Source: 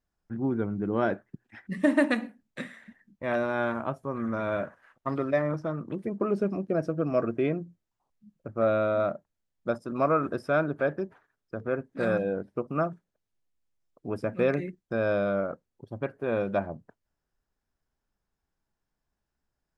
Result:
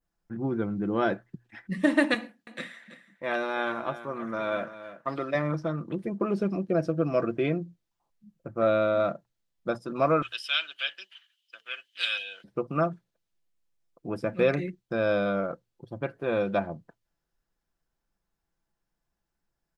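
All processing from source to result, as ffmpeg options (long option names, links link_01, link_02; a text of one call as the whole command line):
ffmpeg -i in.wav -filter_complex "[0:a]asettb=1/sr,asplit=3[link_01][link_02][link_03];[link_01]atrim=end=2.144[link_04];[link_02]atrim=start=2.14:end=5.35,asetpts=PTS-STARTPTS,afade=type=in:duration=0.004:curve=qsin,afade=type=out:start_time=3.206:duration=0.004:curve=qsin,highpass=frequency=300:poles=1,aecho=1:1:329:0.211,atrim=end_sample=141561[link_05];[link_03]atrim=start=5.346[link_06];[link_04][link_05]acrossfade=duration=0.004:curve1=hsin:curve2=qsin[link_07];[link_07][link_06]acrossfade=duration=0.004:curve1=qsin:curve2=hsin,asettb=1/sr,asplit=3[link_08][link_09][link_10];[link_08]atrim=end=10.224[link_11];[link_09]atrim=start=10.22:end=12.44,asetpts=PTS-STARTPTS,afade=type=in:duration=0.004:curve=qsin,afade=type=out:start_time=2.216:duration=0.004:curve=qsin,highpass=frequency=3000:width_type=q:width=16,acontrast=26[link_12];[link_10]atrim=start=12.436[link_13];[link_11][link_12]acrossfade=duration=0.004:curve1=hsin:curve2=qsin[link_14];[link_14][link_13]acrossfade=duration=0.004:curve1=qsin:curve2=hsin,bandreject=frequency=60:width_type=h:width=6,bandreject=frequency=120:width_type=h:width=6,aecho=1:1:5.9:0.35,adynamicequalizer=threshold=0.00282:dfrequency=3800:dqfactor=1:tfrequency=3800:tqfactor=1:attack=5:release=100:ratio=0.375:range=3.5:mode=boostabove:tftype=bell" out.wav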